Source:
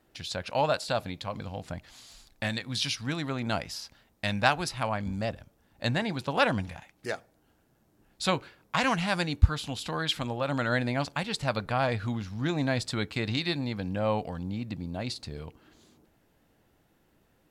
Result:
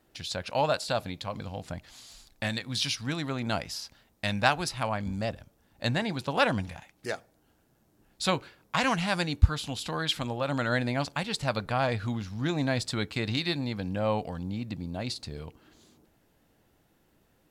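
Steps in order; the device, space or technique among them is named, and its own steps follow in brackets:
exciter from parts (in parallel at −11 dB: high-pass filter 2,700 Hz + soft clipping −30 dBFS, distortion −9 dB)

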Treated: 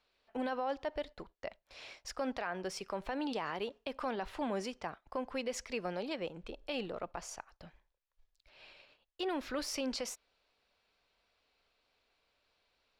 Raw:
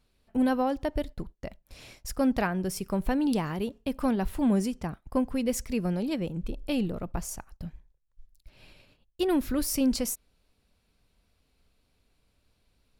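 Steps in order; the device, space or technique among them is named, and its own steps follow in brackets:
DJ mixer with the lows and highs turned down (three-way crossover with the lows and the highs turned down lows −20 dB, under 440 Hz, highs −24 dB, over 5,800 Hz; brickwall limiter −28 dBFS, peak gain reduction 12 dB)
level +1 dB

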